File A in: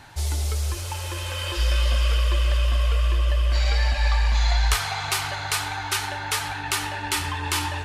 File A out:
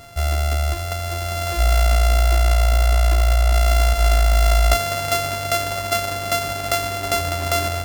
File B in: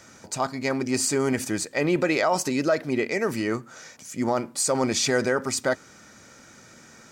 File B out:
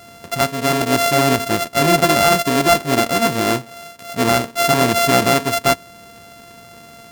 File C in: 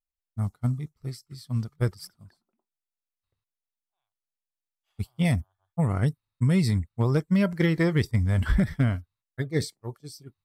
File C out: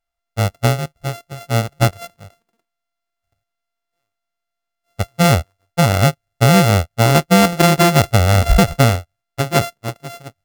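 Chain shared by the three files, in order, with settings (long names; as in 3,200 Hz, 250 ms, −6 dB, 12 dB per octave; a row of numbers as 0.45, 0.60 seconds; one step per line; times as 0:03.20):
samples sorted by size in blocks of 64 samples
normalise the peak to −3 dBFS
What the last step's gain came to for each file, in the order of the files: +5.0, +8.5, +10.5 decibels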